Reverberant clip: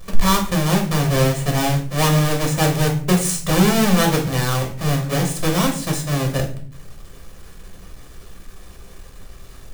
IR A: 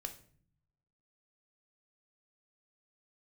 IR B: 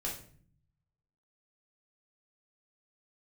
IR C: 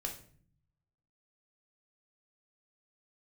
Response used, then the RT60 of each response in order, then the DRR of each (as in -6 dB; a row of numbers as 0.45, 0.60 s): C; 0.50, 0.50, 0.50 s; 6.0, -3.5, 1.5 dB